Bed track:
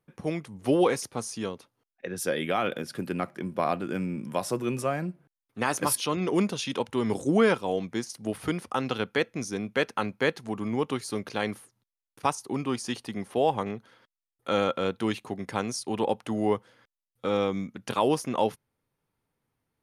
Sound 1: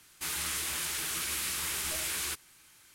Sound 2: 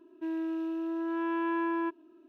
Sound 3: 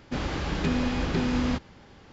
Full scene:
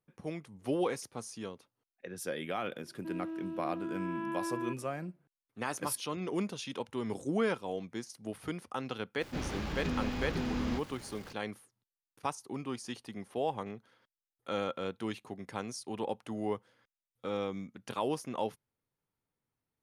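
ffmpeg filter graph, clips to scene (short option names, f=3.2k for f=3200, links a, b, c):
-filter_complex "[0:a]volume=-9dB[a];[3:a]aeval=exprs='val(0)+0.5*0.0112*sgn(val(0))':c=same[b];[2:a]atrim=end=2.28,asetpts=PTS-STARTPTS,volume=-6.5dB,afade=t=in:d=0.004:c=hsin,afade=t=out:st=2.276:d=0.004:c=hsin,adelay=2830[c];[b]atrim=end=2.12,asetpts=PTS-STARTPTS,volume=-9dB,afade=t=in:d=0.004:c=hsin,afade=t=out:st=2.116:d=0.004:c=hsin,adelay=9210[d];[a][c][d]amix=inputs=3:normalize=0"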